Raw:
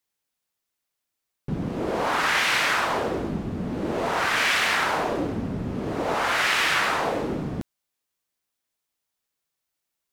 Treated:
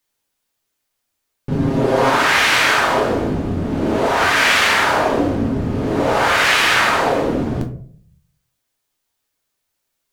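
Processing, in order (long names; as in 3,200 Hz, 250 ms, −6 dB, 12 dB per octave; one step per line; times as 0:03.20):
0:01.51–0:02.10: comb filter 7.5 ms, depth 70%
on a send: convolution reverb RT60 0.55 s, pre-delay 3 ms, DRR 2 dB
on the sum: level +6 dB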